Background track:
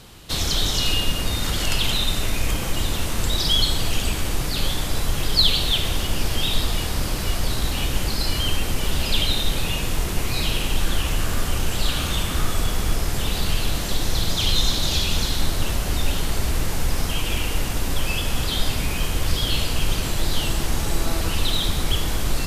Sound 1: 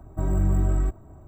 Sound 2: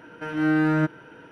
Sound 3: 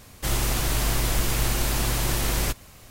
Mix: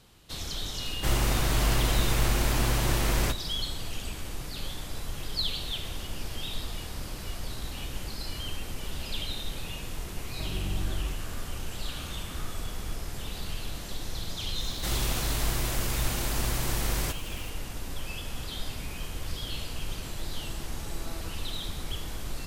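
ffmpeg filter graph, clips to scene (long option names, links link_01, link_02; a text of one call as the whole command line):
ffmpeg -i bed.wav -i cue0.wav -i cue1.wav -i cue2.wav -filter_complex "[3:a]asplit=2[link_01][link_02];[0:a]volume=-13dB[link_03];[link_01]highshelf=frequency=4700:gain=-6.5[link_04];[link_02]aeval=exprs='val(0)+0.5*0.0112*sgn(val(0))':channel_layout=same[link_05];[link_04]atrim=end=2.9,asetpts=PTS-STARTPTS,volume=-0.5dB,afade=type=in:duration=0.004:curve=hsin,afade=type=out:start_time=2.896:duration=0.004:curve=hsin,adelay=800[link_06];[1:a]atrim=end=1.27,asetpts=PTS-STARTPTS,volume=-11dB,afade=type=in:duration=0.004:curve=hsin,afade=type=out:start_time=1.266:duration=0.004:curve=hsin,adelay=10220[link_07];[link_05]atrim=end=2.9,asetpts=PTS-STARTPTS,volume=-6dB,afade=type=in:duration=0.004:curve=hsin,afade=type=out:start_time=2.896:duration=0.004:curve=hsin,adelay=643860S[link_08];[link_03][link_06][link_07][link_08]amix=inputs=4:normalize=0" out.wav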